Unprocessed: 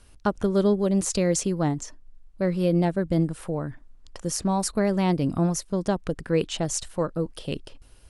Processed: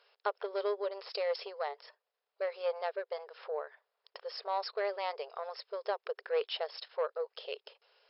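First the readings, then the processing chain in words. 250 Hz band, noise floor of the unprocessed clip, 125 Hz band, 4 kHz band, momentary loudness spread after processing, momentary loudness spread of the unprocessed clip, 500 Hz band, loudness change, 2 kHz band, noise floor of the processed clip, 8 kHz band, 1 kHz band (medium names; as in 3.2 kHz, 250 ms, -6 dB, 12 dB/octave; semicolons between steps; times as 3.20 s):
under -30 dB, -52 dBFS, under -40 dB, -5.5 dB, 9 LU, 9 LU, -8.0 dB, -12.0 dB, -6.0 dB, under -85 dBFS, under -40 dB, -6.0 dB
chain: saturation -17 dBFS, distortion -16 dB; brick-wall FIR band-pass 400–5400 Hz; trim -4 dB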